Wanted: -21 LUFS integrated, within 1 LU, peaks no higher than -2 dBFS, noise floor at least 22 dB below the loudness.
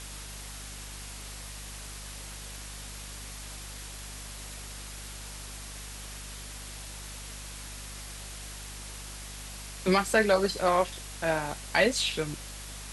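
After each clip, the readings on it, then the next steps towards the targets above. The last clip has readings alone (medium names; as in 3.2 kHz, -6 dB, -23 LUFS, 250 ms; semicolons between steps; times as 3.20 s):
hum 50 Hz; highest harmonic 250 Hz; hum level -42 dBFS; noise floor -42 dBFS; noise floor target -55 dBFS; loudness -33.0 LUFS; peak level -10.0 dBFS; loudness target -21.0 LUFS
-> de-hum 50 Hz, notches 5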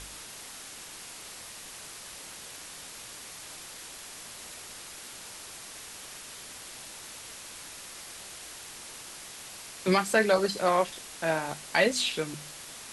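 hum not found; noise floor -45 dBFS; noise floor target -55 dBFS
-> noise reduction 10 dB, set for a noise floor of -45 dBFS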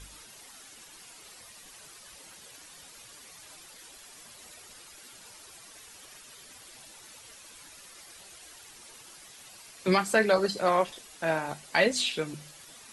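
noise floor -51 dBFS; loudness -27.0 LUFS; peak level -10.0 dBFS; loudness target -21.0 LUFS
-> trim +6 dB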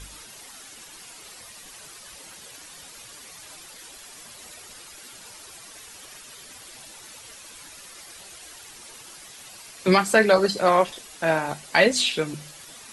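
loudness -21.0 LUFS; peak level -4.0 dBFS; noise floor -45 dBFS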